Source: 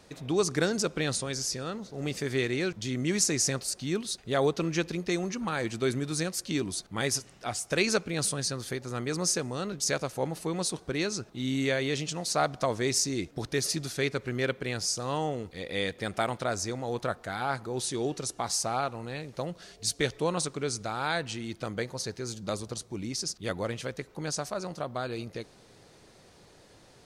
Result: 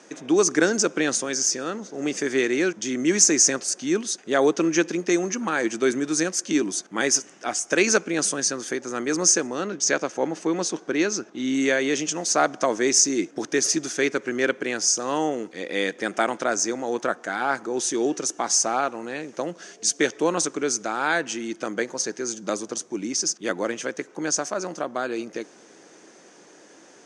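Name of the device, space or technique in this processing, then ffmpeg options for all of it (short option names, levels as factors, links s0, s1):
television speaker: -filter_complex "[0:a]highpass=f=210:w=0.5412,highpass=f=210:w=1.3066,equalizer=f=320:t=q:w=4:g=6,equalizer=f=1600:t=q:w=4:g=5,equalizer=f=4100:t=q:w=4:g=-9,equalizer=f=6300:t=q:w=4:g=9,lowpass=f=8600:w=0.5412,lowpass=f=8600:w=1.3066,asettb=1/sr,asplit=3[s0][s1][s2];[s0]atrim=end=9.474[s3];[s1]atrim=start=9.47:end=11.54,asetpts=PTS-STARTPTS,afade=t=in:d=0.004:c=qsin,afade=t=out:st=2.066:d=0.004:c=qsin,lowpass=6100[s4];[s2]atrim=start=11.536[s5];[s3][s4]acrossfade=d=0.004:c1=hsin:c2=qsin[s6];[s6][s5]acrossfade=d=0.004:c1=qsin:c2=hsin,volume=1.88"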